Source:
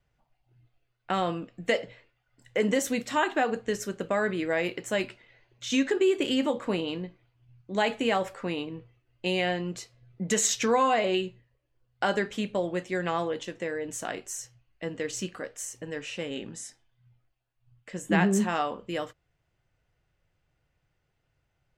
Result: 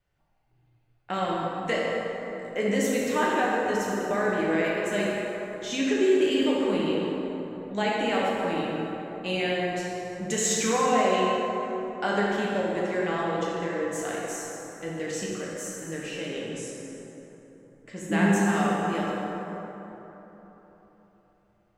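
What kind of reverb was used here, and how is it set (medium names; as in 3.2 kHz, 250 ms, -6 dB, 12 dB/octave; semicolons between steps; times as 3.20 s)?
plate-style reverb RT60 3.8 s, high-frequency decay 0.45×, DRR -5 dB; trim -4 dB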